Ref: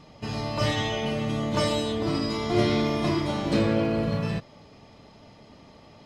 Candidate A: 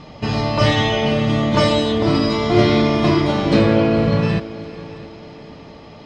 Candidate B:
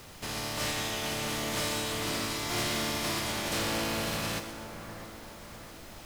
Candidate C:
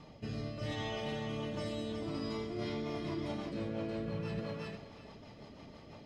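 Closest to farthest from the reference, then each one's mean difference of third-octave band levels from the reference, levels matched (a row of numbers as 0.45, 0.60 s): A, C, B; 2.5, 5.0, 11.5 dB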